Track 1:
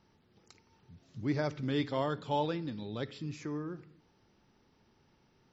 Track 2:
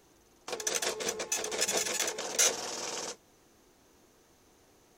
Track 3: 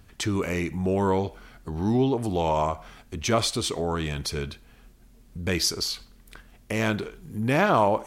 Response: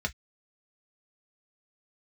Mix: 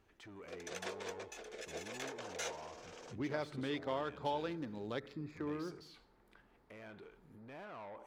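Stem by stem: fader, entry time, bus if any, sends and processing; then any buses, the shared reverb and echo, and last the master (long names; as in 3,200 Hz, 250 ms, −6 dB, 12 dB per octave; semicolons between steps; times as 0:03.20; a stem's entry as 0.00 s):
+1.0 dB, 1.95 s, no send, adaptive Wiener filter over 15 samples; high-shelf EQ 2,800 Hz +11 dB; downward compressor, threshold −33 dBFS, peak gain reduction 8 dB
−7.5 dB, 0.00 s, no send, rotating-speaker cabinet horn 0.8 Hz
−13.0 dB, 0.00 s, no send, soft clipping −23.5 dBFS, distortion −10 dB; brickwall limiter −32 dBFS, peak gain reduction 8.5 dB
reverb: not used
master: bass and treble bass −9 dB, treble −13 dB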